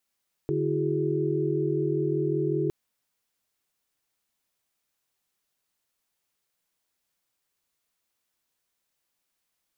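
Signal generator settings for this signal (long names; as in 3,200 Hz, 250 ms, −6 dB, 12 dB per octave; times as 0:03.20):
held notes D3/E4/F#4/G#4 sine, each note −29 dBFS 2.21 s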